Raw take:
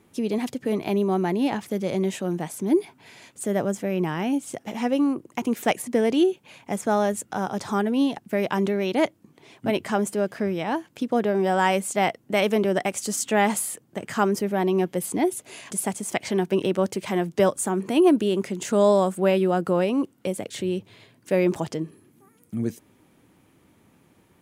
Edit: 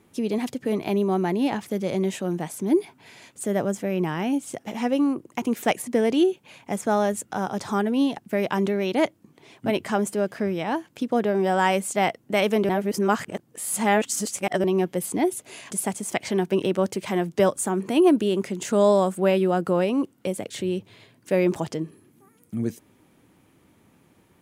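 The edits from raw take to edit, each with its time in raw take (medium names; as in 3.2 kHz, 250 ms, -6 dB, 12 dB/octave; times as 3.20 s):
12.69–14.64 s: reverse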